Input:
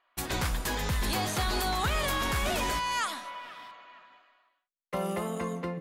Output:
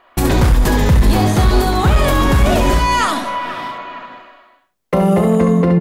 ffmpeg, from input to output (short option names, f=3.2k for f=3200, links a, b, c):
-filter_complex "[0:a]asplit=2[a][b];[b]acompressor=threshold=-42dB:ratio=8,volume=3dB[c];[a][c]amix=inputs=2:normalize=0,tiltshelf=f=790:g=7,aecho=1:1:36|68:0.266|0.501,asoftclip=type=hard:threshold=-15.5dB,alimiter=level_in=19dB:limit=-1dB:release=50:level=0:latency=1,volume=-4dB"